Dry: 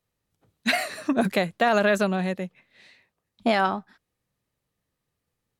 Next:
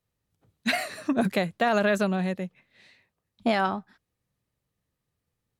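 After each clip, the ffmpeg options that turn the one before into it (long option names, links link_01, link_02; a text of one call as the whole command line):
ffmpeg -i in.wav -af "equalizer=frequency=83:width_type=o:width=2.5:gain=5,volume=-3dB" out.wav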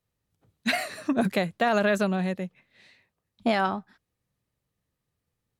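ffmpeg -i in.wav -af anull out.wav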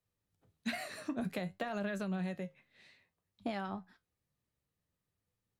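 ffmpeg -i in.wav -filter_complex "[0:a]acrossover=split=140[link_01][link_02];[link_02]acompressor=threshold=-30dB:ratio=6[link_03];[link_01][link_03]amix=inputs=2:normalize=0,flanger=delay=10:depth=3.3:regen=67:speed=0.56:shape=sinusoidal,volume=-1.5dB" out.wav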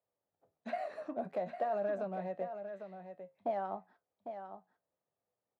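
ffmpeg -i in.wav -af "volume=31dB,asoftclip=hard,volume=-31dB,bandpass=frequency=650:width_type=q:width=2.5:csg=0,aecho=1:1:802:0.355,volume=8.5dB" out.wav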